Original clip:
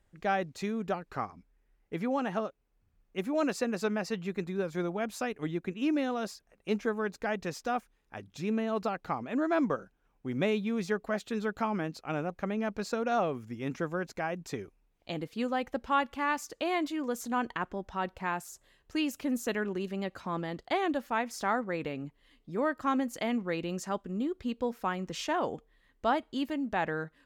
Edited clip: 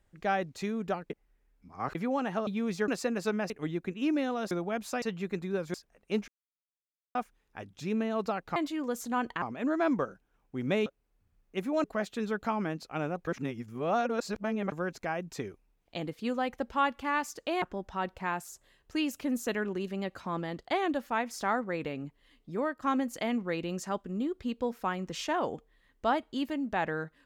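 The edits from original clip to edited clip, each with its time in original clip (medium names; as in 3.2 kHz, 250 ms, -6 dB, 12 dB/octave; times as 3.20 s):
1.10–1.95 s: reverse
2.47–3.45 s: swap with 10.57–10.98 s
4.07–4.79 s: swap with 5.30–6.31 s
6.85–7.72 s: mute
12.41–13.86 s: reverse
16.76–17.62 s: move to 9.13 s
22.55–22.82 s: fade out, to -7.5 dB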